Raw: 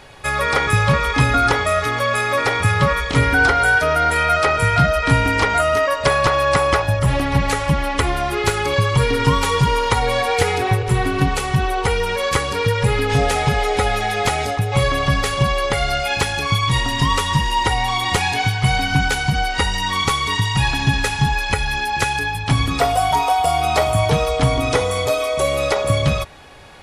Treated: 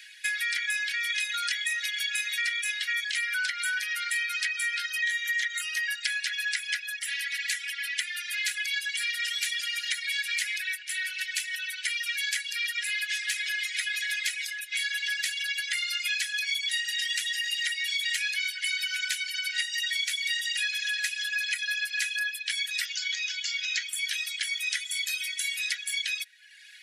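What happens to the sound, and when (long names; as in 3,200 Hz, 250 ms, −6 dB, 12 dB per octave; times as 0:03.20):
0:01.10–0:03.05: comb filter 2.1 ms, depth 56%
0:05.02–0:05.61: EQ curve with evenly spaced ripples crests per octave 1.1, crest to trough 11 dB
0:22.85–0:23.89: bad sample-rate conversion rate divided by 3×, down none, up filtered
whole clip: reverb reduction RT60 0.88 s; Butterworth high-pass 1,600 Hz 96 dB per octave; downward compressor, threshold −26 dBFS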